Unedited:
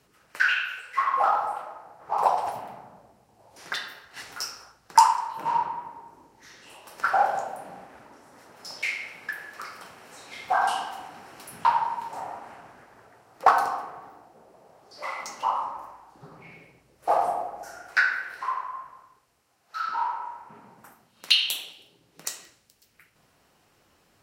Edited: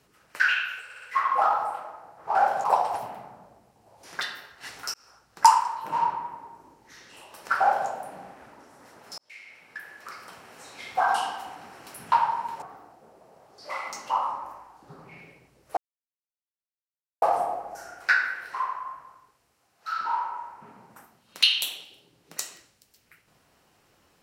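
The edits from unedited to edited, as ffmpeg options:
ffmpeg -i in.wav -filter_complex "[0:a]asplit=10[link_01][link_02][link_03][link_04][link_05][link_06][link_07][link_08][link_09][link_10];[link_01]atrim=end=0.902[link_11];[link_02]atrim=start=0.838:end=0.902[link_12];[link_03]atrim=start=0.838:end=0.902[link_13];[link_04]atrim=start=0.838:end=2.172[link_14];[link_05]atrim=start=7.128:end=7.422[link_15];[link_06]atrim=start=2.168:end=4.47,asetpts=PTS-STARTPTS,afade=type=out:start_time=2.298:duration=0.004:curve=hsin[link_16];[link_07]atrim=start=4.47:end=8.71,asetpts=PTS-STARTPTS,afade=type=in:duration=0.53:curve=qsin,afade=type=out:start_time=4.236:duration=0.004:curve=hsin[link_17];[link_08]atrim=start=8.71:end=12.152,asetpts=PTS-STARTPTS,afade=type=in:duration=1.27[link_18];[link_09]atrim=start=13.948:end=17.1,asetpts=PTS-STARTPTS,afade=type=out:start_time=3.148:duration=0.004:curve=hsin,apad=pad_dur=1.45[link_19];[link_10]atrim=start=17.1,asetpts=PTS-STARTPTS,afade=type=in:duration=0.004:curve=hsin[link_20];[link_11][link_12]acrossfade=duration=0.004:curve1=hsin:curve2=hsin[link_21];[link_21][link_13]acrossfade=duration=0.004:curve1=hsin:curve2=hsin[link_22];[link_22][link_14]acrossfade=duration=0.004:curve1=hsin:curve2=hsin[link_23];[link_23][link_15]acrossfade=duration=0.004:curve1=hsin:curve2=hsin[link_24];[link_16][link_17][link_18]concat=n=3:v=0:a=1[link_25];[link_24][link_25]acrossfade=duration=0.004:curve1=hsin:curve2=hsin[link_26];[link_19][link_20]concat=n=2:v=0:a=1[link_27];[link_26][link_27]acrossfade=duration=0.004:curve1=hsin:curve2=hsin" out.wav

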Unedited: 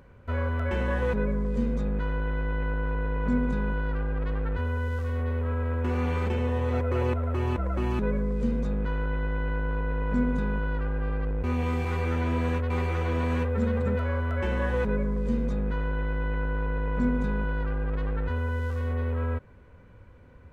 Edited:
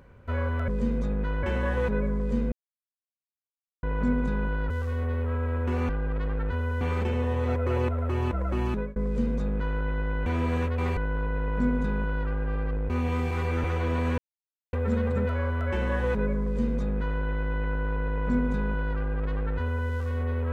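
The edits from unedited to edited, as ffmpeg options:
ffmpeg -i in.wav -filter_complex "[0:a]asplit=13[link_01][link_02][link_03][link_04][link_05][link_06][link_07][link_08][link_09][link_10][link_11][link_12][link_13];[link_01]atrim=end=0.682[link_14];[link_02]atrim=start=15.148:end=15.902[link_15];[link_03]atrim=start=0.678:end=1.77,asetpts=PTS-STARTPTS,afade=type=out:start_time=1.088:duration=0.004:curve=hsin[link_16];[link_04]atrim=start=1.77:end=3.08,asetpts=PTS-STARTPTS,volume=0[link_17];[link_05]atrim=start=3.08:end=3.952,asetpts=PTS-STARTPTS,afade=type=in:duration=0.004:curve=hsin[link_18];[link_06]atrim=start=4.868:end=6.062[link_19];[link_07]atrim=start=3.948:end=4.872[link_20];[link_08]atrim=start=6.058:end=8.21,asetpts=PTS-STARTPTS,afade=type=out:start_time=1.822:duration=0.33:curve=qsin[link_21];[link_09]atrim=start=8.21:end=9.512,asetpts=PTS-STARTPTS,afade=type=in:duration=0.004:curve=hsin[link_22];[link_10]atrim=start=12.178:end=12.892[link_23];[link_11]atrim=start=9.508:end=12.182[link_24];[link_12]atrim=start=12.888:end=13.43,asetpts=PTS-STARTPTS,afade=type=out:start_time=0.538:duration=0.004:curve=hsin,apad=pad_dur=0.55[link_25];[link_13]atrim=start=13.43,asetpts=PTS-STARTPTS,afade=type=in:duration=0.004:curve=hsin[link_26];[link_14][link_15]acrossfade=duration=0.004:curve1=hsin:curve2=hsin[link_27];[link_16][link_17][link_18]concat=n=3:v=0:a=1[link_28];[link_27][link_28]acrossfade=duration=0.004:curve1=hsin:curve2=hsin[link_29];[link_29][link_19]acrossfade=duration=0.004:curve1=hsin:curve2=hsin[link_30];[link_30][link_20]acrossfade=duration=0.004:curve1=hsin:curve2=hsin[link_31];[link_21][link_22]concat=n=2:v=0:a=1[link_32];[link_31][link_32]acrossfade=duration=0.004:curve1=hsin:curve2=hsin[link_33];[link_33][link_23]acrossfade=duration=0.004:curve1=hsin:curve2=hsin[link_34];[link_34][link_24]acrossfade=duration=0.004:curve1=hsin:curve2=hsin[link_35];[link_25][link_26]concat=n=2:v=0:a=1[link_36];[link_35][link_36]acrossfade=duration=0.004:curve1=hsin:curve2=hsin" out.wav

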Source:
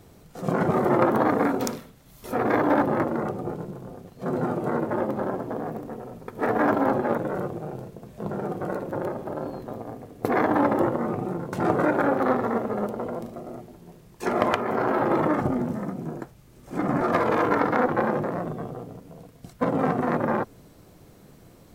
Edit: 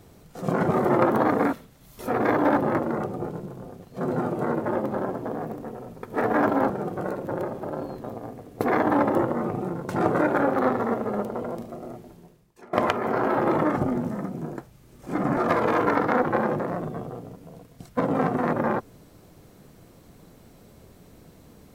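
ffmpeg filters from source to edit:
ffmpeg -i in.wav -filter_complex "[0:a]asplit=4[link_01][link_02][link_03][link_04];[link_01]atrim=end=1.532[link_05];[link_02]atrim=start=1.778:end=6.952[link_06];[link_03]atrim=start=8.338:end=14.37,asetpts=PTS-STARTPTS,afade=type=out:start_time=5.432:duration=0.6:curve=qua:silence=0.0630957[link_07];[link_04]atrim=start=14.37,asetpts=PTS-STARTPTS,afade=type=in:duration=0.004:curve=hsin:silence=0.0630957[link_08];[link_05][link_06]acrossfade=duration=0.004:curve1=hsin:curve2=hsin[link_09];[link_07][link_08]concat=n=2:v=0:a=1[link_10];[link_09][link_10]acrossfade=duration=0.004:curve1=hsin:curve2=hsin" out.wav

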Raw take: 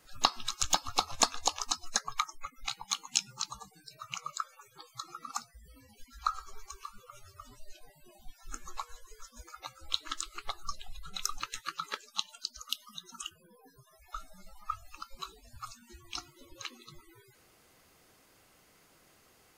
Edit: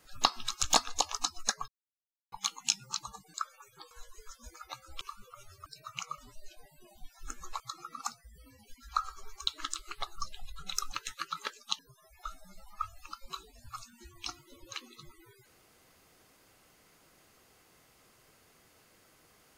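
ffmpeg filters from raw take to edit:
ffmpeg -i in.wav -filter_complex "[0:a]asplit=12[link_01][link_02][link_03][link_04][link_05][link_06][link_07][link_08][link_09][link_10][link_11][link_12];[link_01]atrim=end=0.752[link_13];[link_02]atrim=start=1.218:end=2.15,asetpts=PTS-STARTPTS,afade=type=out:start_time=0.928:duration=0.004:curve=hsin[link_14];[link_03]atrim=start=2.15:end=2.79,asetpts=PTS-STARTPTS,volume=0[link_15];[link_04]atrim=start=2.79:end=3.812,asetpts=PTS-STARTPTS,afade=type=in:duration=0.004:curve=hsin[link_16];[link_05]atrim=start=4.328:end=4.902[link_17];[link_06]atrim=start=8.838:end=9.942[link_18];[link_07]atrim=start=6.768:end=7.422[link_19];[link_08]atrim=start=3.808:end=4.332[link_20];[link_09]atrim=start=7.418:end=8.842[link_21];[link_10]atrim=start=4.898:end=6.772[link_22];[link_11]atrim=start=9.938:end=12.262[link_23];[link_12]atrim=start=13.678[link_24];[link_14][link_15][link_16]concat=n=3:v=0:a=1[link_25];[link_13][link_25]acrossfade=duration=0.004:curve1=hsin:curve2=hsin[link_26];[link_26][link_17]acrossfade=duration=0.004:curve1=hsin:curve2=hsin[link_27];[link_27][link_18]acrossfade=duration=0.004:curve1=hsin:curve2=hsin[link_28];[link_28][link_19]acrossfade=duration=0.004:curve1=hsin:curve2=hsin[link_29];[link_29][link_20]acrossfade=duration=0.004:curve1=hsin:curve2=hsin[link_30];[link_30][link_21]acrossfade=duration=0.004:curve1=hsin:curve2=hsin[link_31];[link_31][link_22]acrossfade=duration=0.004:curve1=hsin:curve2=hsin[link_32];[link_32][link_23]acrossfade=duration=0.004:curve1=hsin:curve2=hsin[link_33];[link_33][link_24]acrossfade=duration=0.004:curve1=hsin:curve2=hsin" out.wav

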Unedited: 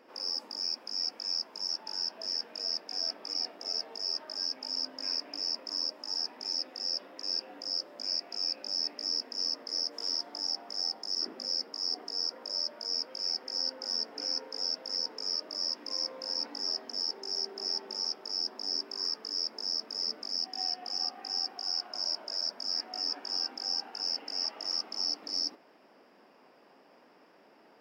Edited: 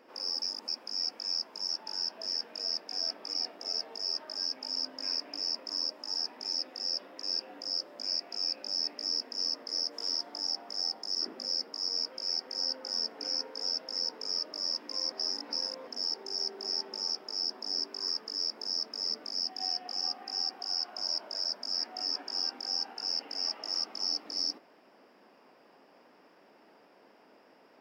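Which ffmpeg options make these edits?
ffmpeg -i in.wav -filter_complex "[0:a]asplit=6[link_01][link_02][link_03][link_04][link_05][link_06];[link_01]atrim=end=0.422[link_07];[link_02]atrim=start=0.418:end=0.682,asetpts=PTS-STARTPTS,areverse[link_08];[link_03]atrim=start=0.678:end=11.892[link_09];[link_04]atrim=start=12.858:end=16.092[link_10];[link_05]atrim=start=16.088:end=16.842,asetpts=PTS-STARTPTS,areverse[link_11];[link_06]atrim=start=16.838[link_12];[link_07][link_08]acrossfade=duration=0.004:curve1=hsin:curve2=hsin[link_13];[link_13][link_09]acrossfade=duration=0.004:curve1=hsin:curve2=hsin[link_14];[link_14][link_10]acrossfade=duration=0.004:curve1=hsin:curve2=hsin[link_15];[link_15][link_11]acrossfade=duration=0.004:curve1=hsin:curve2=hsin[link_16];[link_16][link_12]acrossfade=duration=0.004:curve1=hsin:curve2=hsin" out.wav

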